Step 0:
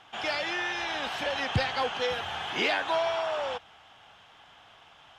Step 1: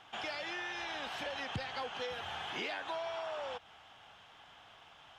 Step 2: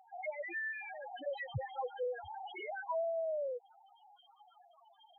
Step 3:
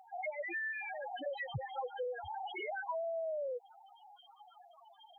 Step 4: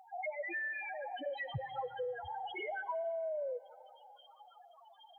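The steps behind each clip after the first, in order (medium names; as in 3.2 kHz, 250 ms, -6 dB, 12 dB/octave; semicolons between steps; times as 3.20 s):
compression 3:1, threshold -36 dBFS, peak gain reduction 11.5 dB; trim -3 dB
loudest bins only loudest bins 2; trim +6.5 dB
compression, threshold -40 dBFS, peak gain reduction 7.5 dB; trim +4 dB
algorithmic reverb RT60 2.5 s, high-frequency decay 0.7×, pre-delay 20 ms, DRR 18.5 dB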